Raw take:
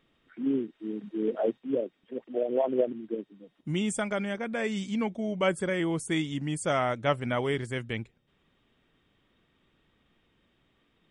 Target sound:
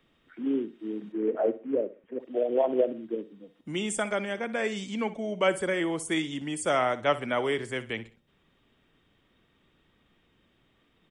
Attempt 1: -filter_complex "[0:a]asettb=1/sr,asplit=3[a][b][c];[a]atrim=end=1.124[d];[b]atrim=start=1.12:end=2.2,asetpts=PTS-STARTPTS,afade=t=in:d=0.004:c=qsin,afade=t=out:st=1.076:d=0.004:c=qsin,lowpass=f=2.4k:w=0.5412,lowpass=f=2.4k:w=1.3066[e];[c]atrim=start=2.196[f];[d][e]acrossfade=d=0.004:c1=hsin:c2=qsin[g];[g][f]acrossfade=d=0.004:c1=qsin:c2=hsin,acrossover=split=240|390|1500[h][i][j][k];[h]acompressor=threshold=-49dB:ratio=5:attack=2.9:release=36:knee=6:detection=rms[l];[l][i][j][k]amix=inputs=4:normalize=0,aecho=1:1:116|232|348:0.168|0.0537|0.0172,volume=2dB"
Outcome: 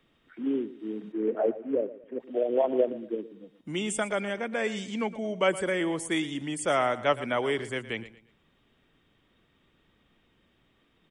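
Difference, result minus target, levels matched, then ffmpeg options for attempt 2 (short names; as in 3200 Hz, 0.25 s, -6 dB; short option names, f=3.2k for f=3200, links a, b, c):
echo 54 ms late
-filter_complex "[0:a]asettb=1/sr,asplit=3[a][b][c];[a]atrim=end=1.124[d];[b]atrim=start=1.12:end=2.2,asetpts=PTS-STARTPTS,afade=t=in:d=0.004:c=qsin,afade=t=out:st=1.076:d=0.004:c=qsin,lowpass=f=2.4k:w=0.5412,lowpass=f=2.4k:w=1.3066[e];[c]atrim=start=2.196[f];[d][e]acrossfade=d=0.004:c1=hsin:c2=qsin[g];[g][f]acrossfade=d=0.004:c1=qsin:c2=hsin,acrossover=split=240|390|1500[h][i][j][k];[h]acompressor=threshold=-49dB:ratio=5:attack=2.9:release=36:knee=6:detection=rms[l];[l][i][j][k]amix=inputs=4:normalize=0,aecho=1:1:62|124|186:0.168|0.0537|0.0172,volume=2dB"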